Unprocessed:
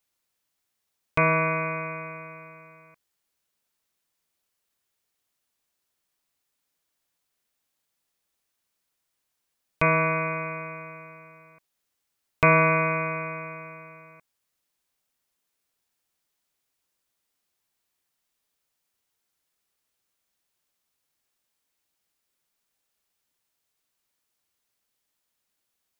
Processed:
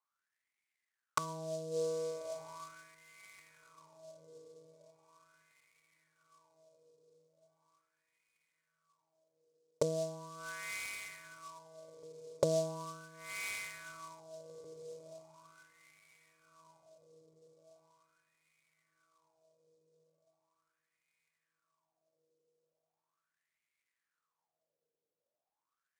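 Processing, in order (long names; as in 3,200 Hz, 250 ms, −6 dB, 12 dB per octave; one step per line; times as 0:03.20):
treble cut that deepens with the level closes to 300 Hz, closed at −24.5 dBFS
low-shelf EQ 270 Hz +10 dB
on a send: feedback delay with all-pass diffusion 1,273 ms, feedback 51%, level −15.5 dB
on the sum: LFO wah 0.39 Hz 460–2,200 Hz, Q 9.1
short delay modulated by noise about 5,700 Hz, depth 0.042 ms
level +8 dB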